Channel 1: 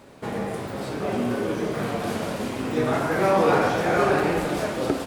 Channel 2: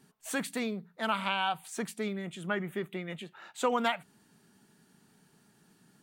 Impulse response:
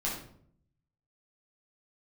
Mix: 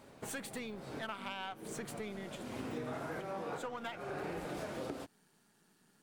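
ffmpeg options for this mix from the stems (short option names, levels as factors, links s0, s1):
-filter_complex "[0:a]volume=0.335,asplit=2[s0][s1];[s1]volume=0.0841[s2];[1:a]aeval=exprs='if(lt(val(0),0),0.447*val(0),val(0))':c=same,lowshelf=f=180:g=-9.5,volume=0.841,asplit=3[s3][s4][s5];[s3]atrim=end=2.43,asetpts=PTS-STARTPTS,afade=t=out:st=2.426:d=0.004:c=hsin[s6];[s4]atrim=start=2.43:end=3.2,asetpts=PTS-STARTPTS,volume=0[s7];[s5]atrim=start=3.2,asetpts=PTS-STARTPTS,afade=t=in:d=0.004:c=hsin[s8];[s6][s7][s8]concat=n=3:v=0:a=1,asplit=2[s9][s10];[s10]apad=whole_len=227683[s11];[s0][s11]sidechaincompress=threshold=0.00112:ratio=3:attack=16:release=193[s12];[2:a]atrim=start_sample=2205[s13];[s2][s13]afir=irnorm=-1:irlink=0[s14];[s12][s9][s14]amix=inputs=3:normalize=0,acompressor=threshold=0.0126:ratio=6"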